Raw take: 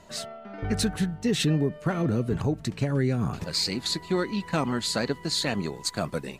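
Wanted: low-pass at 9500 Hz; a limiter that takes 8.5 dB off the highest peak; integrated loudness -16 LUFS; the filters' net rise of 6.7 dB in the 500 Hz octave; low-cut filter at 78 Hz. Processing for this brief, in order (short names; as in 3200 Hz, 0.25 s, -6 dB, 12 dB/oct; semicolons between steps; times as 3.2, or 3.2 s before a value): HPF 78 Hz; LPF 9500 Hz; bell 500 Hz +8.5 dB; gain +12.5 dB; limiter -5.5 dBFS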